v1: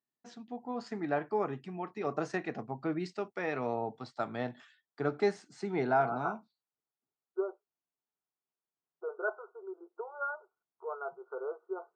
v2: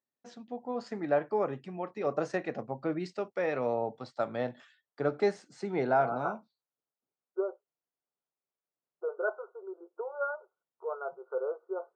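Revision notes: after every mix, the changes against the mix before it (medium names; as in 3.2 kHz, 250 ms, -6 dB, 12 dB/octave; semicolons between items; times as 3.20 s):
master: add peaking EQ 540 Hz +14 dB 0.23 oct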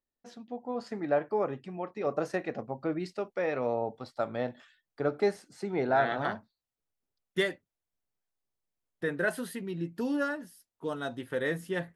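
second voice: remove brick-wall FIR band-pass 360–1500 Hz; master: remove elliptic band-pass 120–7400 Hz, stop band 40 dB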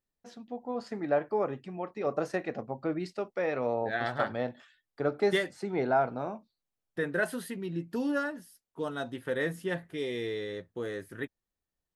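second voice: entry -2.05 s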